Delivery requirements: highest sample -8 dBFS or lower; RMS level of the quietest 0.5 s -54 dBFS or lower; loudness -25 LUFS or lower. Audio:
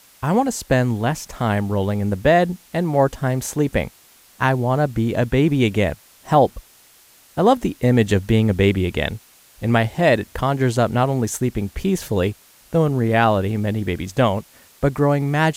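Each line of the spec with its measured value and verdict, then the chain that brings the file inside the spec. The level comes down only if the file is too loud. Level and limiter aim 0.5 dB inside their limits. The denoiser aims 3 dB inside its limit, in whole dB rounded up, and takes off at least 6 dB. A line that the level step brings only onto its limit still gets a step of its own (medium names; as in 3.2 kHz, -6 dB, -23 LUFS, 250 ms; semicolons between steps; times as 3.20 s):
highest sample -4.0 dBFS: fail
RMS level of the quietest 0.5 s -51 dBFS: fail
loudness -20.0 LUFS: fail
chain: trim -5.5 dB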